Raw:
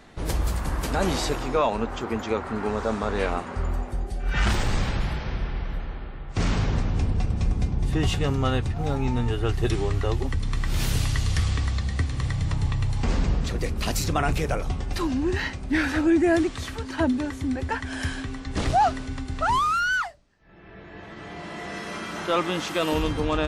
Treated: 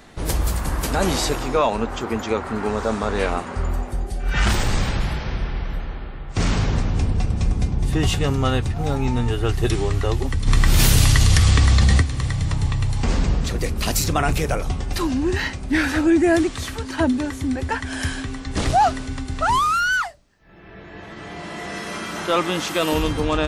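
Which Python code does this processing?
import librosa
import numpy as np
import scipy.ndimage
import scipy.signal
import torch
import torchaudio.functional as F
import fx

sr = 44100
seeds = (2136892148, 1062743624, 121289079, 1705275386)

y = fx.high_shelf(x, sr, hz=7100.0, db=7.5)
y = fx.env_flatten(y, sr, amount_pct=100, at=(10.46, 12.01), fade=0.02)
y = y * librosa.db_to_amplitude(3.5)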